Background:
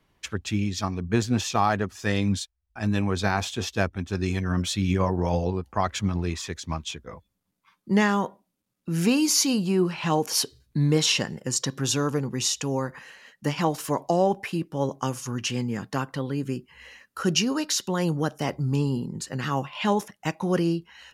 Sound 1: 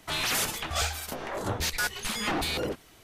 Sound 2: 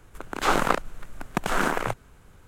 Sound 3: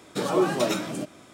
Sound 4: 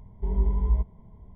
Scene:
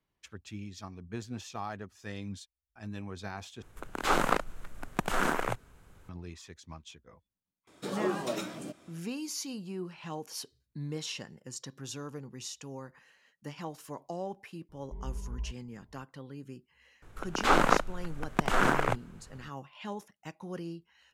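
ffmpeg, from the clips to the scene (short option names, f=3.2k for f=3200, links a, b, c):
-filter_complex "[2:a]asplit=2[a][b];[0:a]volume=-16dB[c];[b]highshelf=f=7.5k:g=-9[d];[c]asplit=2[e][f];[e]atrim=end=3.624[g];[a]atrim=end=2.47,asetpts=PTS-STARTPTS,volume=-4.5dB[h];[f]atrim=start=6.086[i];[3:a]atrim=end=1.33,asetpts=PTS-STARTPTS,volume=-9.5dB,afade=t=in:d=0.004:c=hsin,afade=t=out:st=1.326:d=0.004:c=hsin,adelay=7670[j];[4:a]atrim=end=1.35,asetpts=PTS-STARTPTS,volume=-14.5dB,afade=t=in:d=0.004:c=hsin,afade=t=out:st=1.346:d=0.004:c=hsin,adelay=14690[k];[d]atrim=end=2.47,asetpts=PTS-STARTPTS,volume=-1dB,afade=t=in:d=0.004:c=hsin,afade=t=out:st=2.466:d=0.004:c=hsin,adelay=17020[l];[g][h]acrossfade=d=0.004:c1=hsin:c2=hsin[m];[m][i]acrossfade=d=0.004:c1=hsin:c2=hsin[n];[n][j][k][l]amix=inputs=4:normalize=0"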